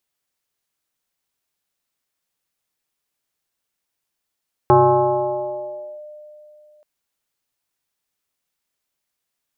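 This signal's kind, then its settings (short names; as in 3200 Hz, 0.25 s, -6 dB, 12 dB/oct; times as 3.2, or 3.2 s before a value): FM tone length 2.13 s, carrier 602 Hz, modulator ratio 0.39, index 1.9, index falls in 1.32 s linear, decay 2.97 s, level -7.5 dB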